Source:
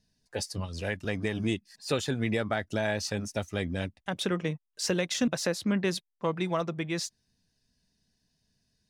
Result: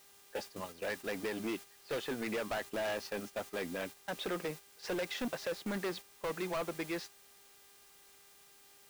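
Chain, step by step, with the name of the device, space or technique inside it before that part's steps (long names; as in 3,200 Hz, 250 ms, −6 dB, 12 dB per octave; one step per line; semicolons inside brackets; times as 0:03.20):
aircraft radio (band-pass filter 340–2,400 Hz; hard clipping −32.5 dBFS, distortion −7 dB; hum with harmonics 400 Hz, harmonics 27, −59 dBFS −2 dB per octave; white noise bed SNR 14 dB; noise gate −45 dBFS, range −8 dB)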